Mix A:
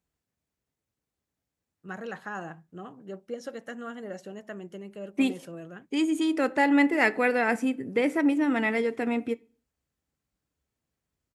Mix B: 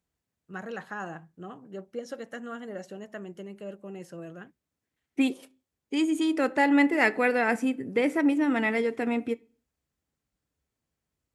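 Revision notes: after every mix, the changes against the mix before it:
first voice: entry −1.35 s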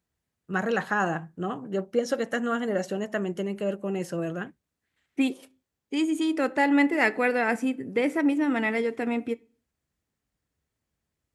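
first voice +11.0 dB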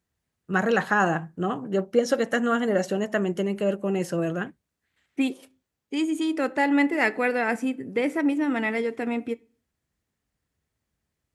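first voice +4.0 dB

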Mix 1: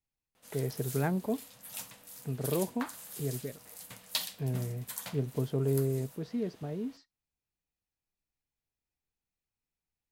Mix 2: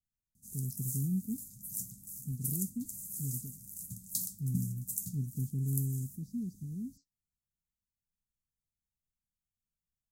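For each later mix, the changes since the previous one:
background: add bass and treble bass +12 dB, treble +5 dB
master: add elliptic band-stop filter 220–6,700 Hz, stop band 50 dB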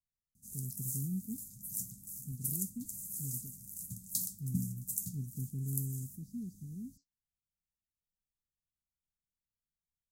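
speech −4.5 dB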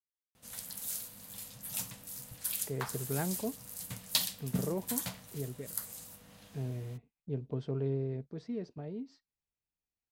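speech: entry +2.15 s
master: remove elliptic band-stop filter 220–6,700 Hz, stop band 50 dB

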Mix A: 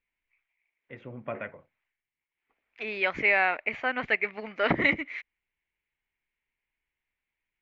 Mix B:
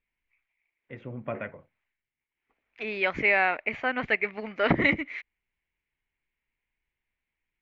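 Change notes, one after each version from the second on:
master: add low-shelf EQ 340 Hz +5.5 dB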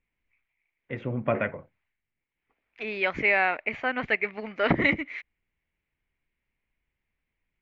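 first voice +8.0 dB

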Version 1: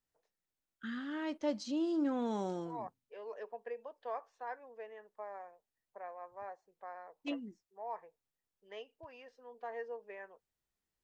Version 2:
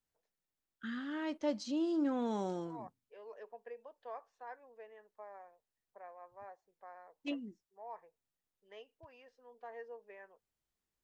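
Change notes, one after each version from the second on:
second voice −5.5 dB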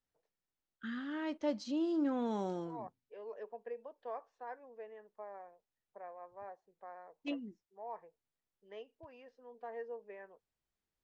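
second voice: add low-shelf EQ 480 Hz +9.5 dB
master: add high-frequency loss of the air 58 metres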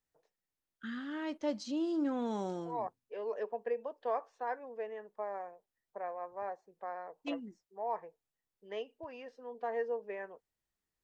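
second voice +8.5 dB
master: remove high-frequency loss of the air 58 metres

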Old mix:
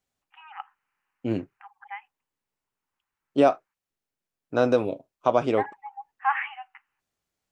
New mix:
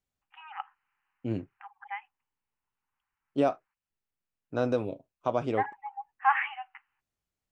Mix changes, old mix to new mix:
second voice −8.0 dB
master: add low-shelf EQ 150 Hz +10.5 dB

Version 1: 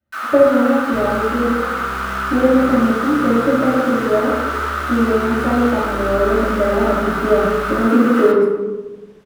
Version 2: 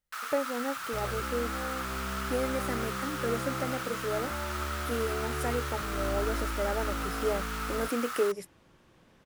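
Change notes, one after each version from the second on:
speech +12.0 dB
second sound −7.0 dB
reverb: off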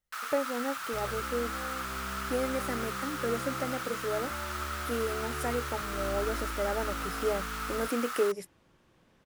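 second sound −4.0 dB

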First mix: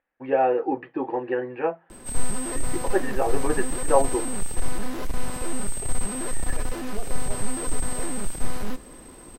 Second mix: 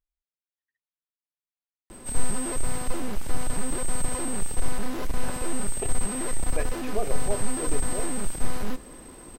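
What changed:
first voice: muted
second voice +8.5 dB

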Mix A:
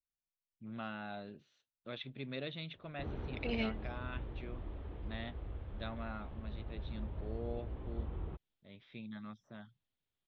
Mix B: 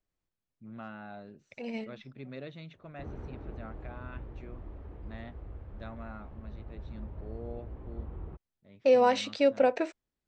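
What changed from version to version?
second voice: entry −1.85 s
master: remove low-pass with resonance 3,500 Hz, resonance Q 3.5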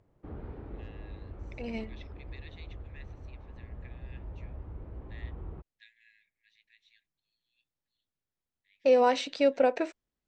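first voice: add linear-phase brick-wall high-pass 1,600 Hz
background: entry −2.75 s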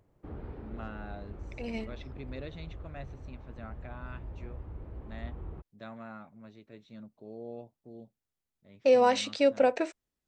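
first voice: remove linear-phase brick-wall high-pass 1,600 Hz
master: remove high-frequency loss of the air 66 metres

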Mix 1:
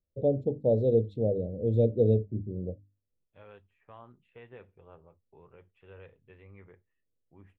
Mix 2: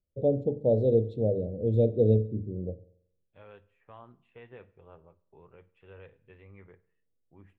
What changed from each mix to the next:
reverb: on, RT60 0.70 s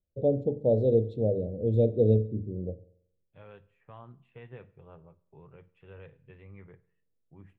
second voice: add parametric band 140 Hz +12 dB 0.64 octaves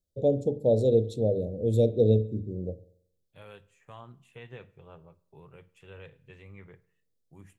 master: remove high-frequency loss of the air 470 metres

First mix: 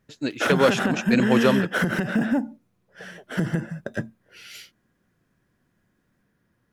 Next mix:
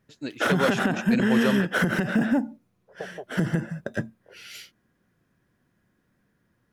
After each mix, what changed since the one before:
first voice −6.5 dB
second voice +10.5 dB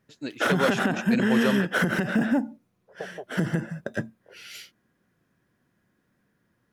master: add low-shelf EQ 75 Hz −8 dB

